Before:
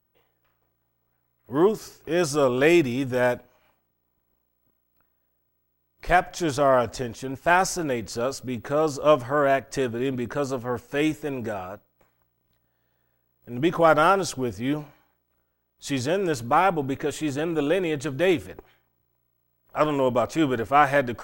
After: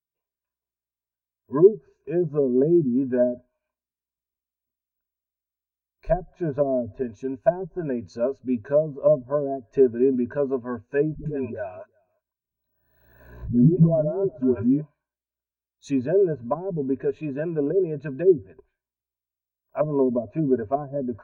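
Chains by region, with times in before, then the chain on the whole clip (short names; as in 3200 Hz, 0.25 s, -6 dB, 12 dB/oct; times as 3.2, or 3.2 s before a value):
11.15–14.81 dispersion highs, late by 0.108 s, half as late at 320 Hz + echo 0.359 s -22.5 dB + backwards sustainer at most 41 dB/s
whole clip: treble ducked by the level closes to 360 Hz, closed at -17.5 dBFS; ripple EQ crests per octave 1.5, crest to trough 11 dB; spectral expander 1.5:1; gain +4.5 dB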